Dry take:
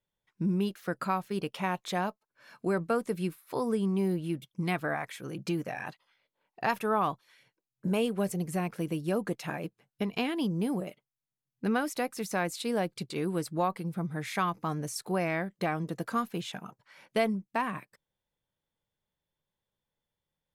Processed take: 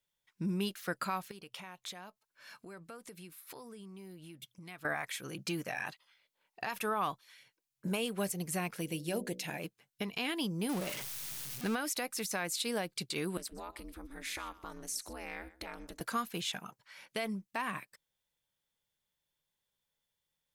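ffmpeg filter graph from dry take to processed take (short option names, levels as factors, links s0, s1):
-filter_complex "[0:a]asettb=1/sr,asplit=3[s0][s1][s2];[s0]atrim=end=1.314[s3];[s1]atrim=start=1.31:end=4.85,asetpts=PTS-STARTPTS,afade=t=in:d=0.004:c=qsin,afade=t=out:st=3.536:d=0.004:c=qsin,bandreject=f=59.67:t=h:w=4,bandreject=f=119.34:t=h:w=4,acompressor=threshold=0.00562:ratio=4:attack=3.2:release=140:knee=1:detection=peak[s4];[s2]atrim=start=4.846[s5];[s3][s4]acrossfade=d=0.004:c1=hsin:c2=qsin[s6];[s6][s5]acrossfade=d=0.004:c1=qsin:c2=hsin,asettb=1/sr,asplit=3[s7][s8][s9];[s7]atrim=end=8.814[s10];[s8]atrim=start=8.81:end=9.6,asetpts=PTS-STARTPTS,afade=t=in:d=0.004:c=qsin,afade=t=out:st=0.786:d=0.004:c=qsin,equalizer=f=1200:t=o:w=0.46:g=-15,bandreject=f=1600:w=28,bandreject=f=61.72:t=h:w=4,bandreject=f=123.44:t=h:w=4,bandreject=f=185.16:t=h:w=4,bandreject=f=246.88:t=h:w=4,bandreject=f=308.6:t=h:w=4,bandreject=f=370.32:t=h:w=4,bandreject=f=432.04:t=h:w=4,bandreject=f=493.76:t=h:w=4,bandreject=f=555.48:t=h:w=4,bandreject=f=617.2:t=h:w=4[s11];[s9]atrim=start=9.596[s12];[s10][s11]acrossfade=d=0.004:c1=hsin:c2=qsin[s13];[s13][s12]acrossfade=d=0.004:c1=qsin:c2=hsin,asettb=1/sr,asplit=3[s14][s15][s16];[s14]atrim=end=10.694[s17];[s15]atrim=start=10.69:end=11.75,asetpts=PTS-STARTPTS,afade=t=in:d=0.004:c=qsin,afade=t=out:st=1.056:d=0.004:c=qsin,aeval=exprs='val(0)+0.5*0.0158*sgn(val(0))':c=same,bandreject=f=7200:w=26[s18];[s16]atrim=start=11.746[s19];[s17][s18]acrossfade=d=0.004:c1=hsin:c2=qsin[s20];[s20][s19]acrossfade=d=0.004:c1=qsin:c2=hsin,asettb=1/sr,asplit=3[s21][s22][s23];[s21]atrim=end=13.374[s24];[s22]atrim=start=13.37:end=16.01,asetpts=PTS-STARTPTS,afade=t=in:d=0.004:c=qsin,afade=t=out:st=2.636:d=0.004:c=qsin,acompressor=threshold=0.0158:ratio=4:attack=3.2:release=140:knee=1:detection=peak,aeval=exprs='val(0)*sin(2*PI*130*n/s)':c=same,aecho=1:1:124:0.126,atrim=end_sample=116424[s25];[s23]atrim=start=16.006[s26];[s24][s25]acrossfade=d=0.004:c1=hsin:c2=qsin[s27];[s27][s26]acrossfade=d=0.004:c1=qsin:c2=hsin,tiltshelf=f=1400:g=-6,alimiter=limit=0.0631:level=0:latency=1:release=103"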